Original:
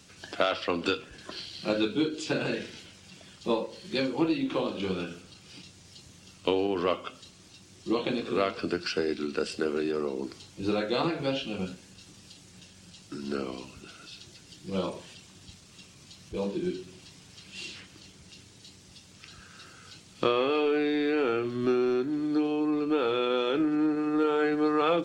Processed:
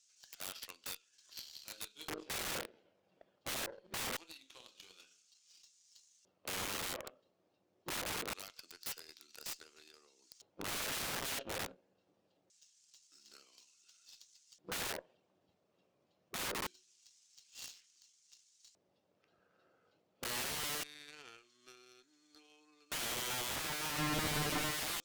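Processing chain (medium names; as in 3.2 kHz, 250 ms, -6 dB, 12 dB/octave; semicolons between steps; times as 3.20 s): LFO band-pass square 0.24 Hz 580–6600 Hz; peak limiter -28.5 dBFS, peak gain reduction 10 dB; integer overflow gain 38.5 dB; 23.98–24.71 s: bass shelf 420 Hz +11 dB; Chebyshev shaper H 2 -21 dB, 3 -20 dB, 5 -17 dB, 7 -15 dB, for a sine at -30.5 dBFS; trim +6 dB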